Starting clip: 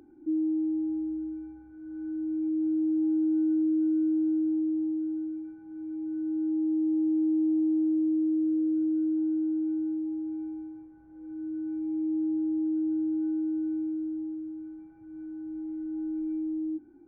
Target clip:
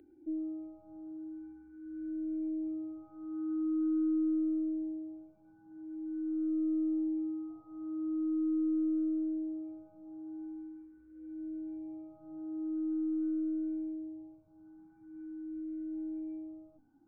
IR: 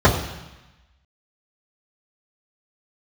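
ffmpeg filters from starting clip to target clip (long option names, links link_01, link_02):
-filter_complex "[0:a]aeval=exprs='0.0841*(cos(1*acos(clip(val(0)/0.0841,-1,1)))-cos(1*PI/2))+0.000473*(cos(2*acos(clip(val(0)/0.0841,-1,1)))-cos(2*PI/2))+0.00211*(cos(4*acos(clip(val(0)/0.0841,-1,1)))-cos(4*PI/2))':channel_layout=same,asplit=2[link_01][link_02];[link_02]afreqshift=0.44[link_03];[link_01][link_03]amix=inputs=2:normalize=1,volume=-4dB"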